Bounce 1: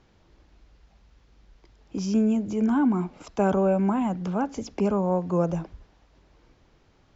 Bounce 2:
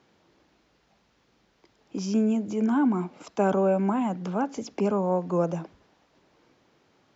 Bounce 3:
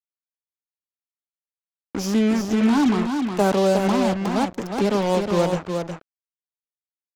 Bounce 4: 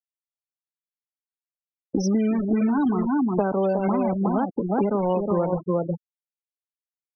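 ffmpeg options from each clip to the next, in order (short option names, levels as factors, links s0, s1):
-af "highpass=180"
-af "acrusher=bits=4:mix=0:aa=0.5,aecho=1:1:363:0.531,volume=1.58"
-af "afftfilt=real='re*gte(hypot(re,im),0.0794)':imag='im*gte(hypot(re,im),0.0794)':win_size=1024:overlap=0.75,acompressor=threshold=0.0447:ratio=10,volume=2.51"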